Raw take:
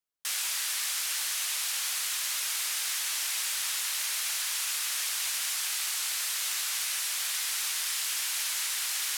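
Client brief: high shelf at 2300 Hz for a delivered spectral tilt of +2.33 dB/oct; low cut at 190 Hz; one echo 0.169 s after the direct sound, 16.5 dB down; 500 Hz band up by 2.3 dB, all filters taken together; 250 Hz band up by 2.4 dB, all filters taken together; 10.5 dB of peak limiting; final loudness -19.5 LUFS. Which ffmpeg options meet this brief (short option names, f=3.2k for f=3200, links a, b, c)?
-af "highpass=190,equalizer=f=250:t=o:g=3,equalizer=f=500:t=o:g=3,highshelf=f=2.3k:g=-5,alimiter=level_in=8dB:limit=-24dB:level=0:latency=1,volume=-8dB,aecho=1:1:169:0.15,volume=19dB"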